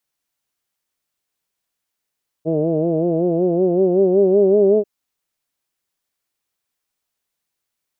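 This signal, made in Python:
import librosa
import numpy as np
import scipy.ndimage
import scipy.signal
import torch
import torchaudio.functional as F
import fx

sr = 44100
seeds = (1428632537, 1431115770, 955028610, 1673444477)

y = fx.formant_vowel(sr, seeds[0], length_s=2.39, hz=155.0, glide_st=5.0, vibrato_hz=5.3, vibrato_st=0.9, f1_hz=400.0, f2_hz=640.0, f3_hz=2800.0)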